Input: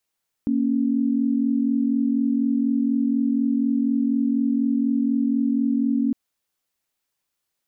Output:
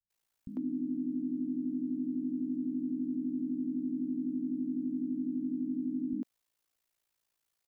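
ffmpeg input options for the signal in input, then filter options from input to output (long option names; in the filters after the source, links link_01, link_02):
-f lavfi -i "aevalsrc='0.0891*(sin(2*PI*233.08*t)+sin(2*PI*277.18*t))':duration=5.66:sample_rate=44100"
-filter_complex "[0:a]alimiter=limit=-24dB:level=0:latency=1:release=29,aeval=exprs='val(0)*sin(2*PI*28*n/s)':channel_layout=same,acrossover=split=190[link_01][link_02];[link_02]adelay=100[link_03];[link_01][link_03]amix=inputs=2:normalize=0"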